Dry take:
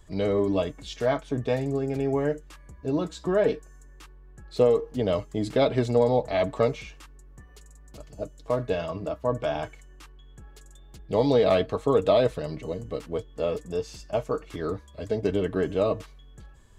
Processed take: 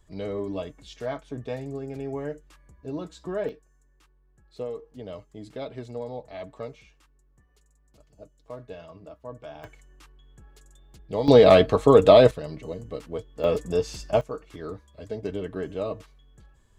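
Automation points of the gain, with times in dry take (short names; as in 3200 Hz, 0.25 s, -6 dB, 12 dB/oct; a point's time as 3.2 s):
-7 dB
from 3.49 s -13.5 dB
from 9.64 s -4 dB
from 11.28 s +7 dB
from 12.31 s -2.5 dB
from 13.44 s +5 dB
from 14.21 s -6 dB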